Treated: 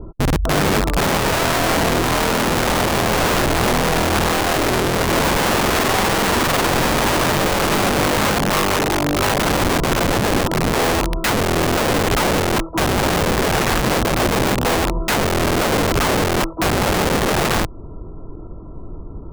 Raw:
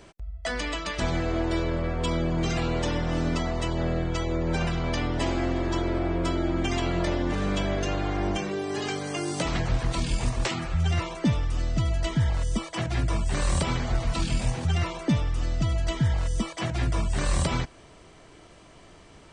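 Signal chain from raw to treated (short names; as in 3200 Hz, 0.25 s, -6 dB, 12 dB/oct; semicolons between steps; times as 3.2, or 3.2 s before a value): tilt -4.5 dB/oct; in parallel at -1 dB: compressor 4:1, threshold -19 dBFS, peak gain reduction 15.5 dB; on the sum: rippled Chebyshev low-pass 1400 Hz, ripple 6 dB; wrapped overs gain 16.5 dB; gain +4 dB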